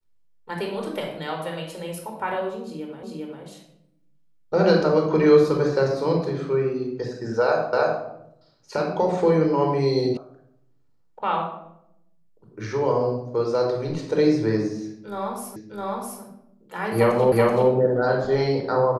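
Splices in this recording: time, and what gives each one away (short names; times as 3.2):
3.03 repeat of the last 0.4 s
7.73 repeat of the last 0.31 s
10.17 sound cut off
15.56 repeat of the last 0.66 s
17.32 repeat of the last 0.38 s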